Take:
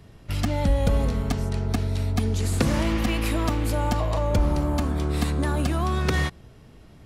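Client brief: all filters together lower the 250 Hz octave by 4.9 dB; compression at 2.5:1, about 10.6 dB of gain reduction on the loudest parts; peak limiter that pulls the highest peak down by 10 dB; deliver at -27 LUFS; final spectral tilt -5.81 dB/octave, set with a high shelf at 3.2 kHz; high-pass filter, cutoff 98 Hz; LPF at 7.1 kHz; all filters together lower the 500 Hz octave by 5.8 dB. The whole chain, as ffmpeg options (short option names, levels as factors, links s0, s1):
-af "highpass=98,lowpass=7100,equalizer=f=250:t=o:g=-4.5,equalizer=f=500:t=o:g=-6,highshelf=f=3200:g=-7,acompressor=threshold=0.0112:ratio=2.5,volume=5.62,alimiter=limit=0.126:level=0:latency=1"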